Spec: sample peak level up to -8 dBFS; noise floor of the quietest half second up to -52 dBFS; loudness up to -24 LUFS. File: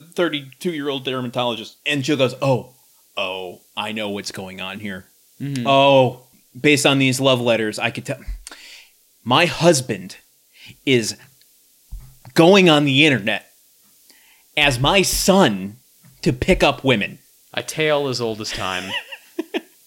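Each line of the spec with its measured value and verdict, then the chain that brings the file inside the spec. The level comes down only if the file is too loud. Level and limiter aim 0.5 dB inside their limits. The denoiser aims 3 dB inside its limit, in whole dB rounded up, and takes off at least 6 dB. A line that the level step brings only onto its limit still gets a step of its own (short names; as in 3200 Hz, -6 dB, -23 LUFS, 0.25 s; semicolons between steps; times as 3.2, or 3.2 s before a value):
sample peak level -2.0 dBFS: fail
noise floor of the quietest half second -55 dBFS: OK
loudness -18.5 LUFS: fail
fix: gain -6 dB; limiter -8.5 dBFS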